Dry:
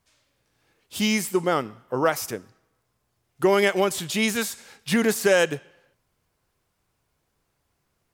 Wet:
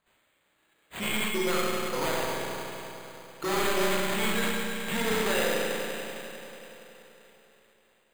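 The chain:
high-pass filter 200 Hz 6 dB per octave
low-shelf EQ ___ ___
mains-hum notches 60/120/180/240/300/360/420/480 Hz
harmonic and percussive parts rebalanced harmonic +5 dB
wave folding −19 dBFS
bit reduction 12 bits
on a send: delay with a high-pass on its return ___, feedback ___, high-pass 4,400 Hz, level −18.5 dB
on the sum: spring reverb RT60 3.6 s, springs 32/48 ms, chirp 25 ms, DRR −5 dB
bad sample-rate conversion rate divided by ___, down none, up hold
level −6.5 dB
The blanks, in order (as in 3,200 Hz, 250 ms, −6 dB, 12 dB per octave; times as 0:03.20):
450 Hz, −8 dB, 310 ms, 75%, 8×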